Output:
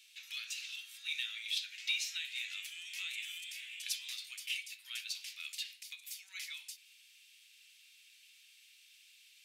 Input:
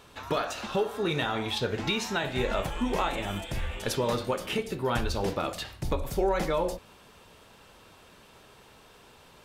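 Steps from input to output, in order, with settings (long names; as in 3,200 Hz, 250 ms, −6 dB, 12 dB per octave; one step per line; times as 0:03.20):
elliptic high-pass filter 2,300 Hz, stop band 80 dB
in parallel at −9.5 dB: soft clipping −31 dBFS, distortion −12 dB
on the sum: level −4 dB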